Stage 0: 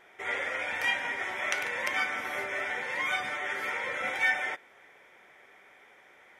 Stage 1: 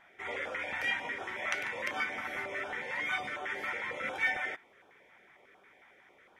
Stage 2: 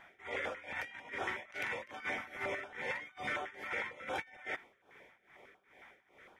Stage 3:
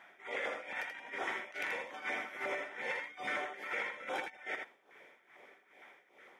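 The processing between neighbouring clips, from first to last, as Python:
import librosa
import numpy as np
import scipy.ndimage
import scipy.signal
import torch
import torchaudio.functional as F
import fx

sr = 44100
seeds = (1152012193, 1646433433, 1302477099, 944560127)

y1 = fx.high_shelf(x, sr, hz=3700.0, db=-10.0)
y1 = fx.filter_held_notch(y1, sr, hz=11.0, low_hz=420.0, high_hz=2000.0)
y2 = fx.low_shelf(y1, sr, hz=120.0, db=4.5)
y2 = fx.over_compress(y2, sr, threshold_db=-38.0, ratio=-0.5)
y2 = y2 * (1.0 - 0.87 / 2.0 + 0.87 / 2.0 * np.cos(2.0 * np.pi * 2.4 * (np.arange(len(y2)) / sr)))
y2 = y2 * 10.0 ** (1.0 / 20.0)
y3 = scipy.signal.sosfilt(scipy.signal.butter(2, 240.0, 'highpass', fs=sr, output='sos'), y2)
y3 = y3 + 10.0 ** (-5.5 / 20.0) * np.pad(y3, (int(82 * sr / 1000.0), 0))[:len(y3)]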